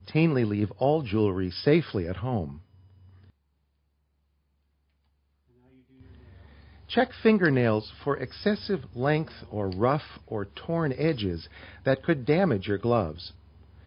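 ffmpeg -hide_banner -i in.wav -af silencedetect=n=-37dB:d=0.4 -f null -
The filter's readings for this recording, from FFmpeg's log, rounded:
silence_start: 2.58
silence_end: 6.90 | silence_duration: 4.32
silence_start: 13.28
silence_end: 13.86 | silence_duration: 0.58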